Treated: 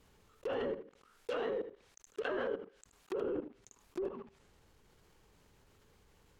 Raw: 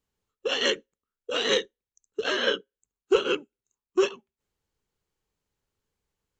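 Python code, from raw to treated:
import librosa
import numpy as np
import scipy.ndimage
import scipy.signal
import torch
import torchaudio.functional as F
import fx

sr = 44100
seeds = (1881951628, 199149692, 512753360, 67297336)

y = fx.block_float(x, sr, bits=3)
y = 10.0 ** (-17.5 / 20.0) * np.tanh(y / 10.0 ** (-17.5 / 20.0))
y = fx.env_lowpass_down(y, sr, base_hz=610.0, full_db=-23.5)
y = fx.low_shelf(y, sr, hz=300.0, db=-9.0, at=(0.71, 3.24))
y = y + 10.0 ** (-16.0 / 20.0) * np.pad(y, (int(77 * sr / 1000.0), 0))[:len(y)]
y = fx.level_steps(y, sr, step_db=20)
y = fx.high_shelf(y, sr, hz=3600.0, db=-8.0)
y = fx.env_flatten(y, sr, amount_pct=50)
y = y * librosa.db_to_amplitude(4.0)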